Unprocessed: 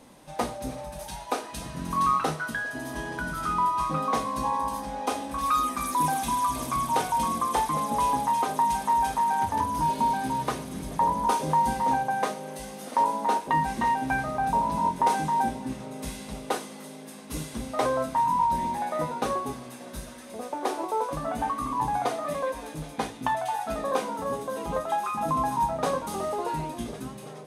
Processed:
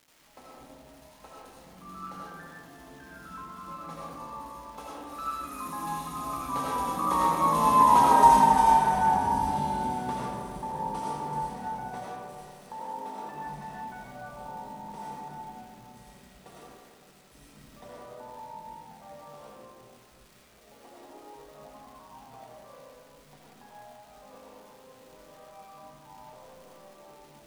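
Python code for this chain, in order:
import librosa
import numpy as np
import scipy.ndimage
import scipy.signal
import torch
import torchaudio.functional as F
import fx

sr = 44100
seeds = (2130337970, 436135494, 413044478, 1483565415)

y = fx.doppler_pass(x, sr, speed_mps=20, closest_m=9.7, pass_at_s=8.16)
y = fx.dmg_crackle(y, sr, seeds[0], per_s=410.0, level_db=-48.0)
y = fx.rev_freeverb(y, sr, rt60_s=2.1, hf_ratio=0.3, predelay_ms=45, drr_db=-6.0)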